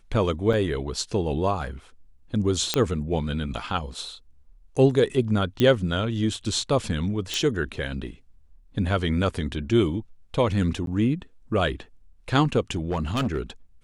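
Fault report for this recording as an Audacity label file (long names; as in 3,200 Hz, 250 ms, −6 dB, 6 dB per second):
0.530000	0.530000	drop-out 4 ms
2.740000	2.740000	click −6 dBFS
5.600000	5.600000	click −10 dBFS
7.340000	7.340000	click
10.860000	10.870000	drop-out 12 ms
12.750000	13.390000	clipping −21 dBFS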